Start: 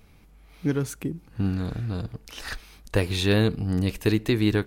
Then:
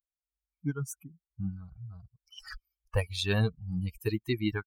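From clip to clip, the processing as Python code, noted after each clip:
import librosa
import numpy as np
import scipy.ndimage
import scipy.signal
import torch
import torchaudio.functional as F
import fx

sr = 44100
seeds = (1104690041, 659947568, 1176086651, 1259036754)

y = fx.bin_expand(x, sr, power=3.0)
y = fx.peak_eq(y, sr, hz=290.0, db=-5.0, octaves=1.4)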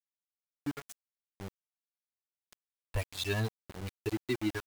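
y = x + 0.7 * np.pad(x, (int(3.0 * sr / 1000.0), 0))[:len(x)]
y = np.where(np.abs(y) >= 10.0 ** (-31.5 / 20.0), y, 0.0)
y = y * librosa.db_to_amplitude(-5.0)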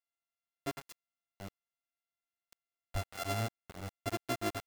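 y = np.r_[np.sort(x[:len(x) // 64 * 64].reshape(-1, 64), axis=1).ravel(), x[len(x) // 64 * 64:]]
y = y * librosa.db_to_amplitude(-3.0)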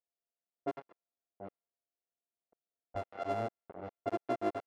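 y = fx.env_lowpass(x, sr, base_hz=610.0, full_db=-33.0)
y = fx.bandpass_q(y, sr, hz=530.0, q=1.1)
y = y * librosa.db_to_amplitude(5.5)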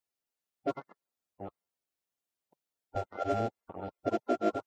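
y = fx.spec_quant(x, sr, step_db=30)
y = y * librosa.db_to_amplitude(5.0)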